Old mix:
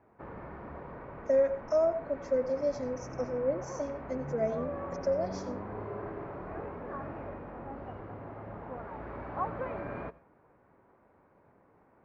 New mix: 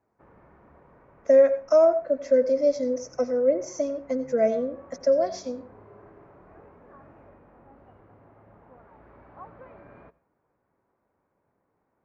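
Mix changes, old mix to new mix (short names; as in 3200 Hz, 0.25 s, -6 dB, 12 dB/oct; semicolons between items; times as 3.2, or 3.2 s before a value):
speech +9.0 dB; background -11.0 dB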